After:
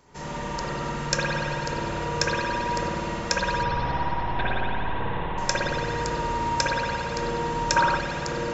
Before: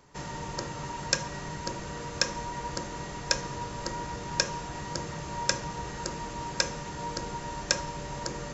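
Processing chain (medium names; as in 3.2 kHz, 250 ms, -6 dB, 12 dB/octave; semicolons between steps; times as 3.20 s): 3.63–5.38 s: LPC vocoder at 8 kHz pitch kept; spring tank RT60 2.6 s, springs 55 ms, chirp 45 ms, DRR -7.5 dB; 7.76–7.97 s: time-frequency box 760–1600 Hz +8 dB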